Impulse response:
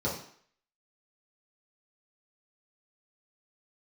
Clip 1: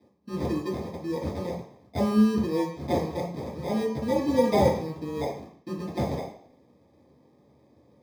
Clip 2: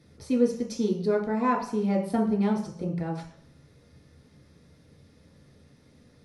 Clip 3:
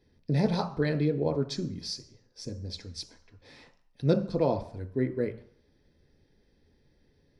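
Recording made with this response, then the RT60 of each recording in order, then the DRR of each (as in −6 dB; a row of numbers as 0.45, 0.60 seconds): 1; 0.55, 0.55, 0.55 seconds; −8.0, −3.5, 5.5 decibels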